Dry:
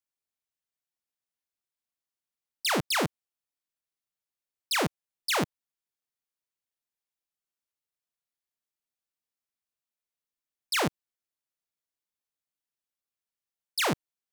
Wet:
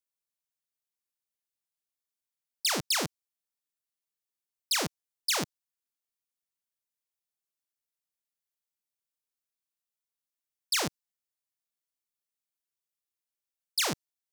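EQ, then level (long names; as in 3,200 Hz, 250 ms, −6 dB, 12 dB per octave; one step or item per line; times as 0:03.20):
dynamic equaliser 5,500 Hz, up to +6 dB, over −44 dBFS, Q 1.2
high-shelf EQ 4,000 Hz +7.5 dB
−6.0 dB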